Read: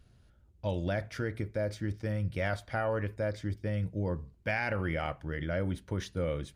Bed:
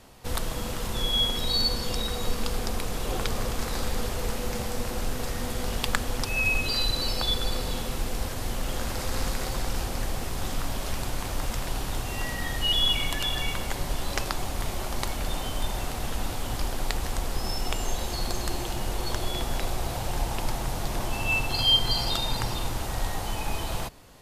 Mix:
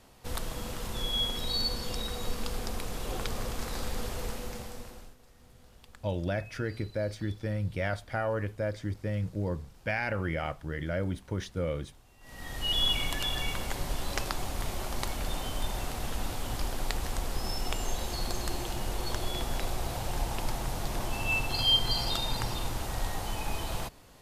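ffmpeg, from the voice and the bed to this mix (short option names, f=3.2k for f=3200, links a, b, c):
-filter_complex "[0:a]adelay=5400,volume=0.5dB[a];[1:a]volume=19dB,afade=t=out:st=4.2:d=0.96:silence=0.0749894,afade=t=in:st=12.21:d=0.6:silence=0.0595662[b];[a][b]amix=inputs=2:normalize=0"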